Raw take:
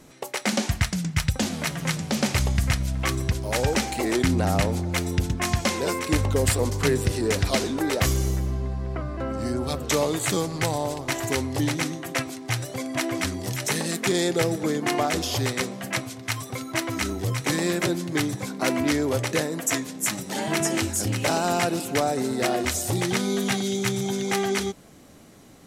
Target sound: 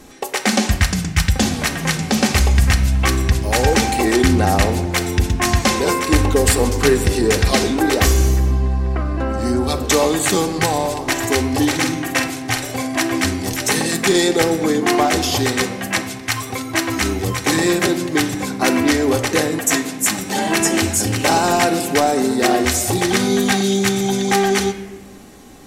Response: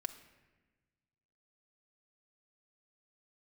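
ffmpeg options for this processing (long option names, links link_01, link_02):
-filter_complex "[0:a]asettb=1/sr,asplit=3[link_01][link_02][link_03];[link_01]atrim=end=11.484[link_04];[link_02]atrim=start=11.48:end=13.03,asetpts=PTS-STARTPTS,afade=type=in:duration=0.004:curve=qsin,afade=type=out:start_time=1.546:duration=0.004:curve=qsin,asplit=2[link_05][link_06];[link_06]adelay=47,volume=-7dB[link_07];[link_05][link_07]amix=inputs=2:normalize=0,atrim=end_sample=68355[link_08];[link_03]atrim=start=13.026[link_09];[link_04][link_08]acrossfade=duration=0.004:curve1=hsin:curve2=qsin[link_10];[link_10][link_09]acrossfade=duration=0.004:curve1=qsin:curve2=hsin[link_11];[1:a]atrim=start_sample=2205,asetrate=48510,aresample=44100[link_12];[link_11][link_12]afir=irnorm=-1:irlink=0,acontrast=47,volume=5dB"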